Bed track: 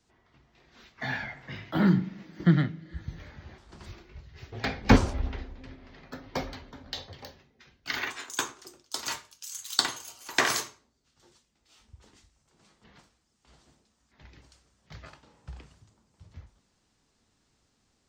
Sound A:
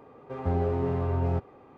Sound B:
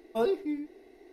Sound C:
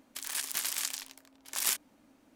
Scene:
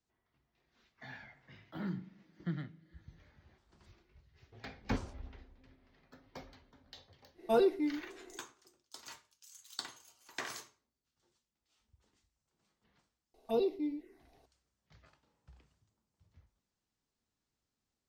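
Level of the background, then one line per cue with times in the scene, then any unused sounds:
bed track −17 dB
0:07.34: mix in B −0.5 dB, fades 0.10 s + comb filter 5.7 ms, depth 36%
0:13.34: mix in B −3 dB + phaser swept by the level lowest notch 280 Hz, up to 1,600 Hz, full sweep at −31 dBFS
not used: A, C

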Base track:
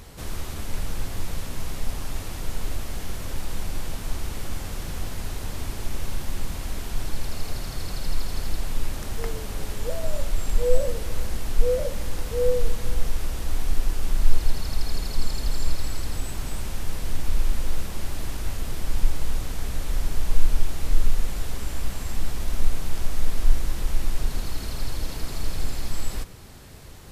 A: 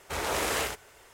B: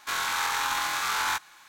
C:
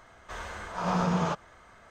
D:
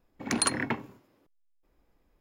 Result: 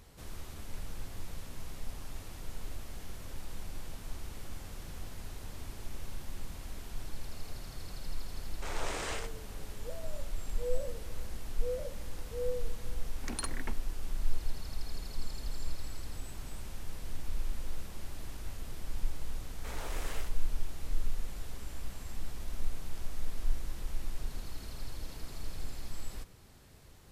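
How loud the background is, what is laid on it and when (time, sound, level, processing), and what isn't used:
base track −12.5 dB
0:08.52: mix in A −9 dB + linear-phase brick-wall low-pass 9,500 Hz
0:12.97: mix in D −11.5 dB + mu-law and A-law mismatch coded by A
0:19.54: mix in A −13 dB + brickwall limiter −21 dBFS
not used: B, C

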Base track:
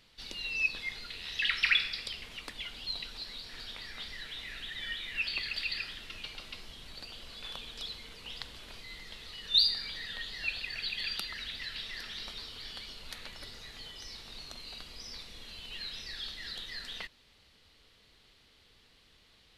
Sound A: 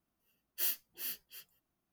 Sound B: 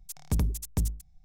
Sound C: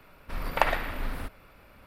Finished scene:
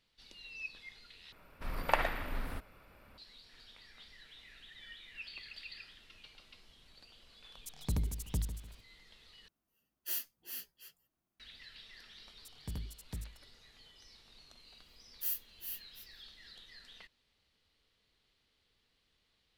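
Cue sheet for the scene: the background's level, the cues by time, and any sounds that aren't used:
base track −13.5 dB
0:01.32: overwrite with C −5.5 dB
0:07.57: mix in B −7 dB + feedback echo at a low word length 149 ms, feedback 35%, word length 9 bits, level −12 dB
0:09.48: overwrite with A −3.5 dB
0:12.36: mix in B −15 dB + notch filter 6,500 Hz
0:14.63: mix in A −10 dB + high-shelf EQ 9,200 Hz +10 dB

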